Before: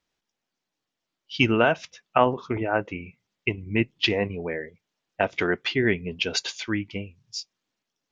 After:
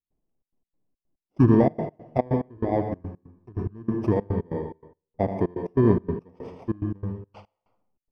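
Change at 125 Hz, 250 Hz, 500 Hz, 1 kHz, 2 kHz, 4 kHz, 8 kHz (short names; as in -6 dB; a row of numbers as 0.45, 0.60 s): +6.5 dB, +4.0 dB, 0.0 dB, -4.5 dB, -18.5 dB, under -25 dB, n/a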